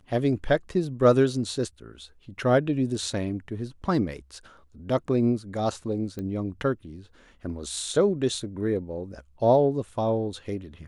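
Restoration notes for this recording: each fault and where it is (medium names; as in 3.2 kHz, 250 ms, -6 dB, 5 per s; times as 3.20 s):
6.19 s: pop -22 dBFS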